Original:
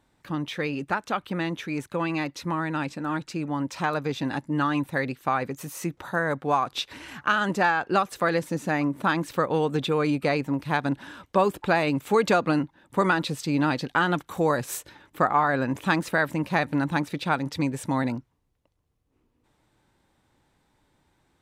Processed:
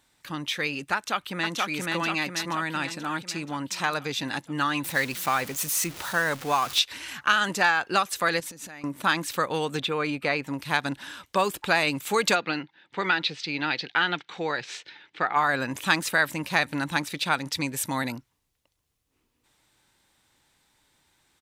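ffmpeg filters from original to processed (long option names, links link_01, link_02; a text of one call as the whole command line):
ffmpeg -i in.wav -filter_complex "[0:a]asplit=2[link_01][link_02];[link_02]afade=type=in:start_time=0.95:duration=0.01,afade=type=out:start_time=1.58:duration=0.01,aecho=0:1:480|960|1440|1920|2400|2880|3360|3840|4320:0.891251|0.534751|0.32085|0.19251|0.115506|0.0693037|0.0415822|0.0249493|0.0149696[link_03];[link_01][link_03]amix=inputs=2:normalize=0,asettb=1/sr,asplit=3[link_04][link_05][link_06];[link_04]atrim=end=4.844[link_07];[link_05]atrim=start=4.84:end=6.79,asetpts=PTS-STARTPTS,afade=type=in:duration=0.004:curve=qsin,afade=type=out:start_time=1.946:duration=0.004:curve=qsin,aeval=exprs='val(0)+0.5*0.015*sgn(val(0))':channel_layout=same[link_08];[link_06]atrim=start=6.786[link_09];[link_07][link_08]acrossfade=duration=0.004:curve1=hsin:curve2=qsin[link_10];[link_10][link_09]acrossfade=duration=0.004:curve1=qsin:curve2=hsin,asettb=1/sr,asplit=3[link_11][link_12][link_13];[link_11]atrim=end=8.404[link_14];[link_12]atrim=start=8.4:end=8.84,asetpts=PTS-STARTPTS,afade=type=in:duration=0.004:curve=qsin,afade=type=out:start_time=0.436:duration=0.004:curve=qsin,acompressor=threshold=-37dB:ratio=16:attack=3.2:release=140:knee=1:detection=peak[link_15];[link_13]atrim=start=8.836[link_16];[link_14][link_15]acrossfade=duration=0.004:curve1=hsin:curve2=qsin[link_17];[link_17][link_16]acrossfade=duration=0.004:curve1=qsin:curve2=hsin,asettb=1/sr,asplit=3[link_18][link_19][link_20];[link_18]atrim=end=9.804[link_21];[link_19]atrim=start=9.8:end=10.47,asetpts=PTS-STARTPTS,afade=type=in:duration=0.004:curve=qsin,afade=type=out:start_time=0.666:duration=0.004:curve=qsin,bass=frequency=250:gain=-2,treble=frequency=4000:gain=-12[link_22];[link_20]atrim=start=10.466[link_23];[link_21][link_22]acrossfade=duration=0.004:curve1=hsin:curve2=qsin[link_24];[link_24][link_23]acrossfade=duration=0.004:curve1=qsin:curve2=hsin,asplit=3[link_25][link_26][link_27];[link_25]afade=type=out:start_time=12.34:duration=0.02[link_28];[link_26]highpass=190,equalizer=frequency=250:width_type=q:width=4:gain=-8,equalizer=frequency=590:width_type=q:width=4:gain=-6,equalizer=frequency=1100:width_type=q:width=4:gain=-8,equalizer=frequency=2200:width_type=q:width=4:gain=3,lowpass=frequency=4400:width=0.5412,lowpass=frequency=4400:width=1.3066,afade=type=in:start_time=12.34:duration=0.02,afade=type=out:start_time=15.35:duration=0.02[link_29];[link_27]afade=type=in:start_time=15.35:duration=0.02[link_30];[link_28][link_29][link_30]amix=inputs=3:normalize=0,asettb=1/sr,asplit=3[link_31][link_32][link_33];[link_31]atrim=end=17.764[link_34];[link_32]atrim=start=17.76:end=18.18,asetpts=PTS-STARTPTS,afade=type=in:duration=0.004:curve=qsin,afade=type=out:start_time=0.416:duration=0.004:curve=qsin,equalizer=frequency=12000:width=4.4:gain=11[link_35];[link_33]atrim=start=18.176[link_36];[link_34][link_35]acrossfade=duration=0.004:curve1=hsin:curve2=qsin[link_37];[link_37][link_36]acrossfade=duration=0.004:curve1=qsin:curve2=hsin,tiltshelf=frequency=1500:gain=-8,volume=2dB" out.wav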